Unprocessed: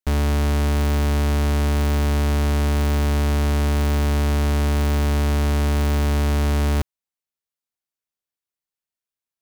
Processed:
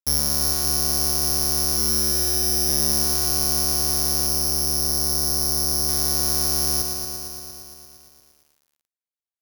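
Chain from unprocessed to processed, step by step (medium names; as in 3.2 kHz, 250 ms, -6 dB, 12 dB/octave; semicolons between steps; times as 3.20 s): high-pass 62 Hz 12 dB/octave; 1.77–2.69 s: Schmitt trigger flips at -36 dBFS; 4.26–5.89 s: treble shelf 2.3 kHz -11 dB; careless resampling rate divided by 8×, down filtered, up zero stuff; bit-crushed delay 115 ms, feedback 80%, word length 7-bit, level -4.5 dB; trim -9 dB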